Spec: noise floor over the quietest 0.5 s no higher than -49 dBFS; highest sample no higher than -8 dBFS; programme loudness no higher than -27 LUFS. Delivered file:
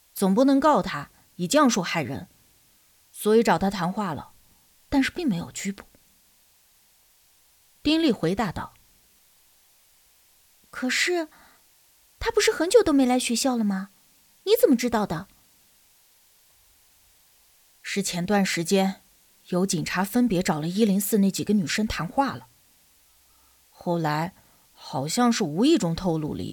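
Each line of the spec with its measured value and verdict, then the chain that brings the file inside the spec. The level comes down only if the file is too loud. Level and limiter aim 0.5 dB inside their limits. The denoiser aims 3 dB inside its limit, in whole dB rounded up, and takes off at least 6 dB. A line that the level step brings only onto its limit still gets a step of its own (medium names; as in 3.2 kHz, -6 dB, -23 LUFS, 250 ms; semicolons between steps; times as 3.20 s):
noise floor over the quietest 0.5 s -60 dBFS: pass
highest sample -5.5 dBFS: fail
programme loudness -24.0 LUFS: fail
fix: trim -3.5 dB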